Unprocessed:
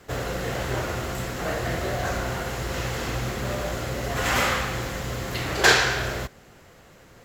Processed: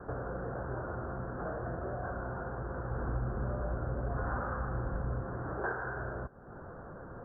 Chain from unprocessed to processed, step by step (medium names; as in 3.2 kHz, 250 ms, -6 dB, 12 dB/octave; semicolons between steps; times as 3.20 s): steep low-pass 1.6 kHz 96 dB/octave; compression 3:1, threshold -47 dBFS, peak gain reduction 23 dB; 2.90–5.21 s: bass shelf 95 Hz +10.5 dB; trim +6 dB